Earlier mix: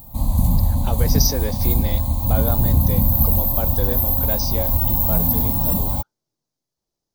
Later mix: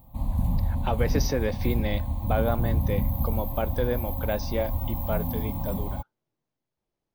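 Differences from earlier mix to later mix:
background −8.0 dB
master: add high shelf with overshoot 3,700 Hz −11 dB, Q 1.5

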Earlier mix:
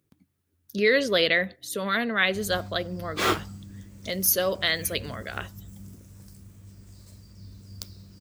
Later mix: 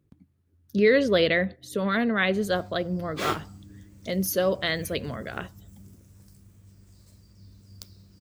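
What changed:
speech: add spectral tilt −2.5 dB per octave
background −5.5 dB

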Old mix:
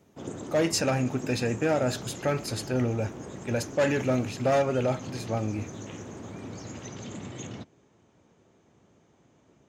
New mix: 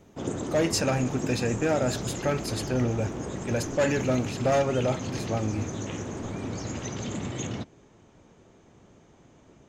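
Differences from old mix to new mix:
background +6.0 dB
master: remove high-pass filter 76 Hz

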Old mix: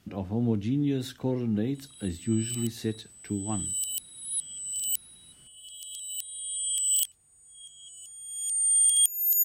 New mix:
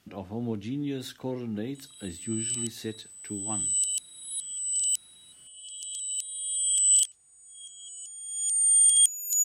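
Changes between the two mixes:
background: add low-pass with resonance 7,500 Hz, resonance Q 2
master: add low-shelf EQ 300 Hz −9 dB

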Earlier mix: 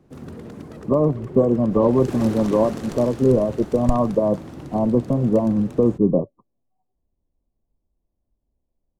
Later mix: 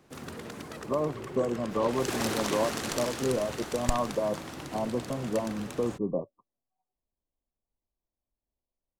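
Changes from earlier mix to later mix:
speech −8.0 dB
master: add tilt shelving filter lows −8.5 dB, about 690 Hz

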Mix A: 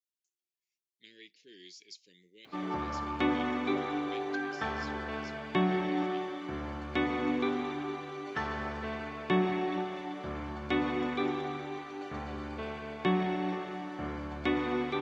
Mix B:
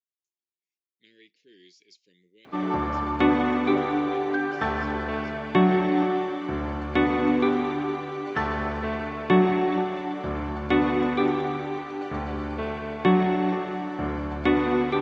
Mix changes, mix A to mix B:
background +9.0 dB
master: add high-shelf EQ 3,300 Hz −9.5 dB

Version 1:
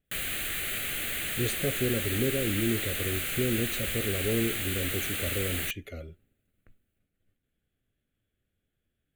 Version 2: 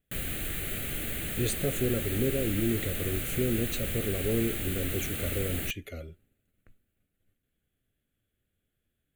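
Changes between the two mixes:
background: add tilt shelving filter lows +8 dB, about 640 Hz
master: add high-shelf EQ 7,900 Hz +7 dB

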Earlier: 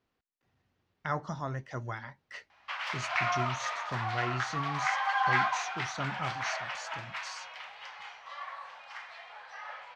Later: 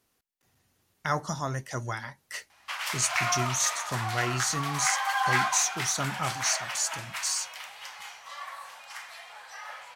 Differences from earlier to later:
speech +3.5 dB
master: remove high-frequency loss of the air 220 metres

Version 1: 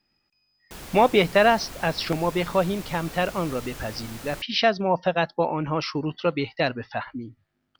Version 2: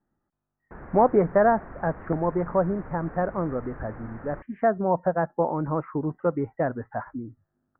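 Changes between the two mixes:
speech: add Bessel low-pass filter 1,200 Hz, order 2
master: add Butterworth low-pass 1,800 Hz 48 dB per octave

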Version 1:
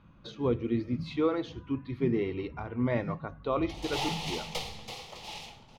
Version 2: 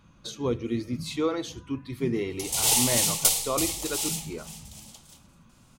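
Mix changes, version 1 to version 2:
background: entry −1.30 s
master: remove high-frequency loss of the air 290 metres

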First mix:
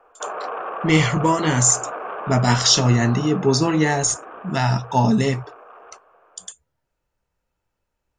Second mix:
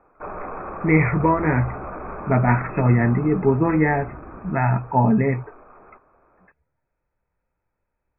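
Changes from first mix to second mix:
background: remove loudspeaker in its box 450–2,800 Hz, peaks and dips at 470 Hz +8 dB, 710 Hz +6 dB, 1,100 Hz +4 dB, 1,600 Hz +6 dB, 2,500 Hz +5 dB
master: add linear-phase brick-wall low-pass 2,600 Hz

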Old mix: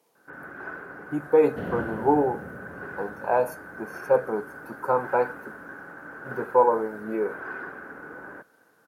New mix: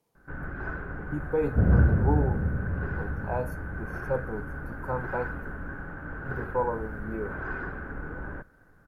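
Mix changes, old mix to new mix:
speech −9.5 dB
second sound: add low-pass filter 1,100 Hz
master: remove high-pass filter 310 Hz 12 dB per octave

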